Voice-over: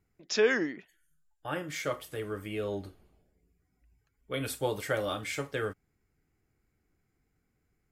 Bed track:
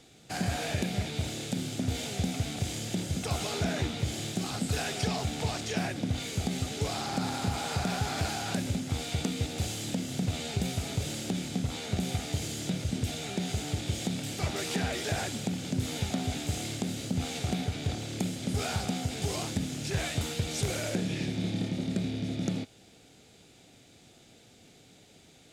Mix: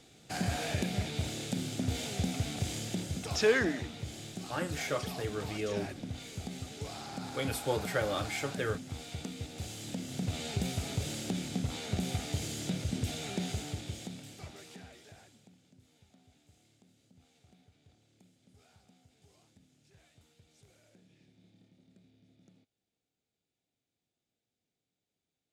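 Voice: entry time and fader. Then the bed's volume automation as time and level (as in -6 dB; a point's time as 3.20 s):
3.05 s, -1.0 dB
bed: 2.78 s -2 dB
3.77 s -9.5 dB
9.51 s -9.5 dB
10.47 s -2.5 dB
13.43 s -2.5 dB
15.82 s -32.5 dB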